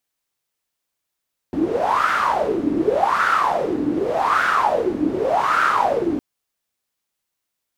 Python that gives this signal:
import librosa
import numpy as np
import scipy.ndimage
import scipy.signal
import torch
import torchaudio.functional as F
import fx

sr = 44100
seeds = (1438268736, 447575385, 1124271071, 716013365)

y = fx.wind(sr, seeds[0], length_s=4.66, low_hz=290.0, high_hz=1400.0, q=9.3, gusts=4, swing_db=4.5)